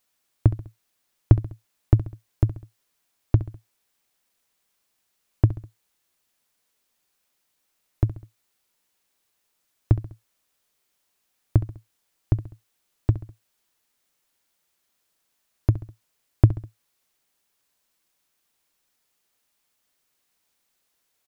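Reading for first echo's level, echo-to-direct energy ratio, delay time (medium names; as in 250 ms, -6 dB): -14.0 dB, -13.0 dB, 67 ms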